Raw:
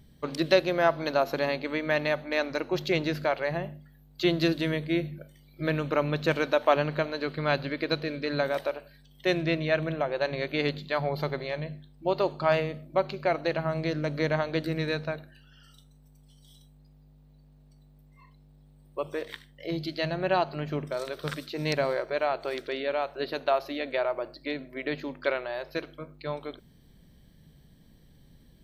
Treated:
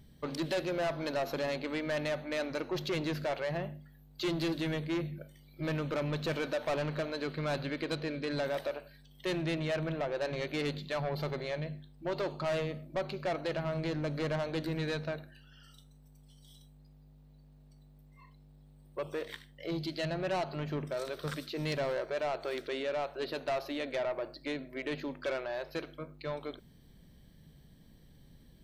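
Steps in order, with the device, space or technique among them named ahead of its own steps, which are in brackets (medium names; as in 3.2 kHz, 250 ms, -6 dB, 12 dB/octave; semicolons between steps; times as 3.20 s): 7.81–8.31 s: treble shelf 9.9 kHz -8.5 dB; saturation between pre-emphasis and de-emphasis (treble shelf 11 kHz +11.5 dB; saturation -27 dBFS, distortion -8 dB; treble shelf 11 kHz -11.5 dB); trim -1.5 dB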